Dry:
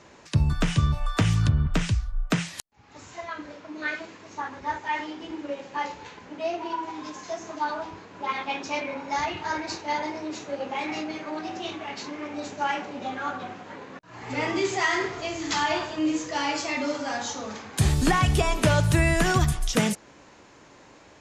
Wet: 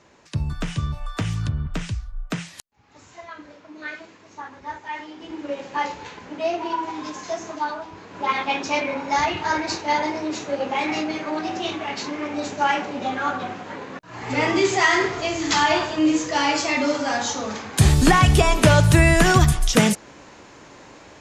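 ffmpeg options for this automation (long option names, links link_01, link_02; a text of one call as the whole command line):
ffmpeg -i in.wav -af "volume=13.5dB,afade=type=in:start_time=5.1:duration=0.53:silence=0.375837,afade=type=out:start_time=7.4:duration=0.47:silence=0.446684,afade=type=in:start_time=7.87:duration=0.33:silence=0.375837" out.wav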